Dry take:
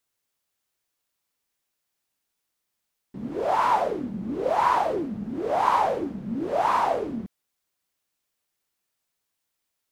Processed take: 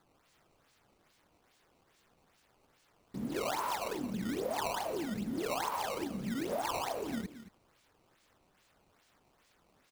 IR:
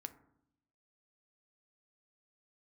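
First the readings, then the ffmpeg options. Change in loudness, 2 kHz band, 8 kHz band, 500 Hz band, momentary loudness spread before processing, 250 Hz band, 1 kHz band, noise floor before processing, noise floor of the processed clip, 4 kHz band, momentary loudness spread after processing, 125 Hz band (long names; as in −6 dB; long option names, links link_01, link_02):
−11.5 dB, −7.5 dB, can't be measured, −10.5 dB, 11 LU, −6.0 dB, −14.5 dB, −81 dBFS, −71 dBFS, −0.5 dB, 6 LU, −5.0 dB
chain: -filter_complex "[0:a]aemphasis=mode=production:type=50kf,acompressor=threshold=-30dB:ratio=10,acrusher=samples=15:mix=1:aa=0.000001:lfo=1:lforange=24:lforate=2.4,asplit=2[link_01][link_02];[link_02]aecho=0:1:223:0.211[link_03];[link_01][link_03]amix=inputs=2:normalize=0,volume=-2.5dB"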